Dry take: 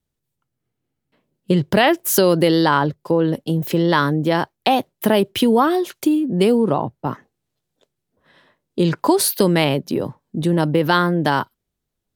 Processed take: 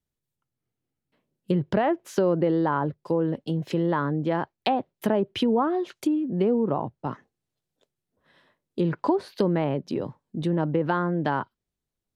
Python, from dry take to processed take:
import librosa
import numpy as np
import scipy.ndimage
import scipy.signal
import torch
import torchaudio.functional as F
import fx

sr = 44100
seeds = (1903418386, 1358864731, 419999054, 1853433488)

y = fx.env_lowpass_down(x, sr, base_hz=1200.0, full_db=-11.5)
y = y * librosa.db_to_amplitude(-7.0)